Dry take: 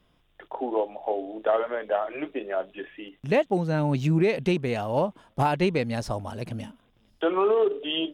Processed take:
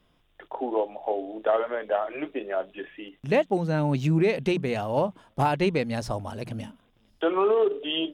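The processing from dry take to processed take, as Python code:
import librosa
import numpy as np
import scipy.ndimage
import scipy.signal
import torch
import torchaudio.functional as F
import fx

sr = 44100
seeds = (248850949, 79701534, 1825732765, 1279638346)

y = fx.hum_notches(x, sr, base_hz=60, count=3)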